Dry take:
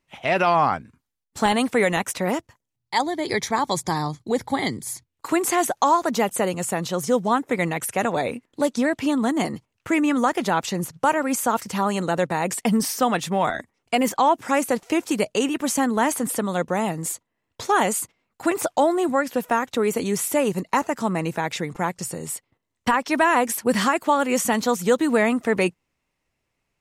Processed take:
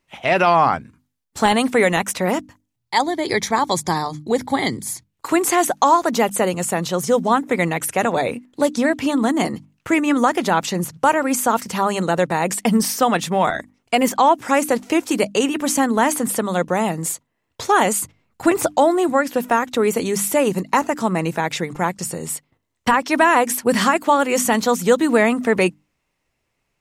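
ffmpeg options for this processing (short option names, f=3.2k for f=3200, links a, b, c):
-filter_complex "[0:a]asettb=1/sr,asplit=3[a][b][c];[a]atrim=end=18.004[d];[b]atrim=start=18:end=18.74,asetpts=PTS-STARTPTS,afade=t=in:d=0.004:c=qsin,afade=t=out:st=0.736:d=0.004:c=qsin,lowshelf=f=180:g=11[e];[c]atrim=start=18.736[f];[d][e]acrossfade=d=0.004:c1=hsin:c2=qsin[g];[g][f]acrossfade=d=0.004:c1=qsin:c2=hsin,bandreject=f=50:t=h:w=6,bandreject=f=100:t=h:w=6,bandreject=f=150:t=h:w=6,bandreject=f=200:t=h:w=6,bandreject=f=250:t=h:w=6,bandreject=f=300:t=h:w=6,volume=4dB"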